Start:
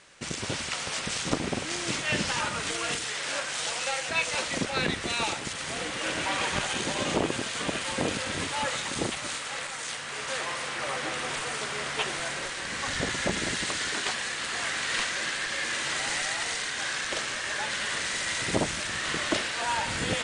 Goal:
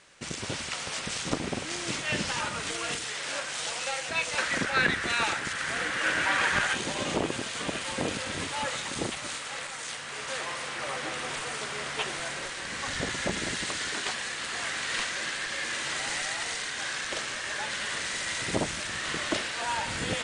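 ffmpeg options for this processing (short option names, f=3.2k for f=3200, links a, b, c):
-filter_complex "[0:a]asettb=1/sr,asplit=3[a][b][c];[a]atrim=end=4.384[d];[b]atrim=start=4.38:end=6.75,asetpts=PTS-STARTPTS,afade=t=in:d=0.004:c=qsin,afade=t=out:st=2.366:d=0.004:c=qsin,equalizer=f=1.6k:t=o:w=0.79:g=11.5[e];[c]atrim=start=6.746[f];[d][e]acrossfade=d=0.004:c1=hsin:c2=qsin[g];[g][f]acrossfade=d=0.004:c1=qsin:c2=hsin,volume=-2dB"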